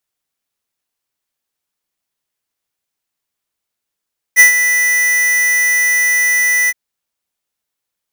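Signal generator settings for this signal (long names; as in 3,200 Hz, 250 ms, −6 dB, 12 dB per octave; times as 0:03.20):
note with an ADSR envelope square 1,980 Hz, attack 40 ms, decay 115 ms, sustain −9.5 dB, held 2.33 s, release 39 ms −3.5 dBFS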